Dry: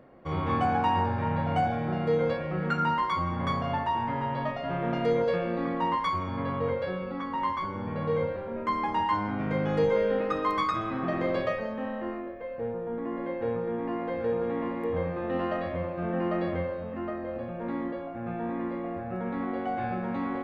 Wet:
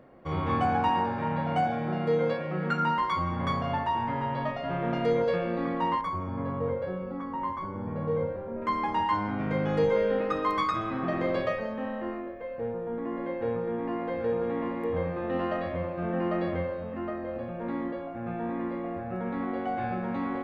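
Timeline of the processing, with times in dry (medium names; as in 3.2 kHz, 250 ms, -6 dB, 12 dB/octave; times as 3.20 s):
0.89–2.98 s: high-pass 130 Hz 24 dB/octave
6.01–8.62 s: peaking EQ 3.9 kHz -13 dB 2.4 oct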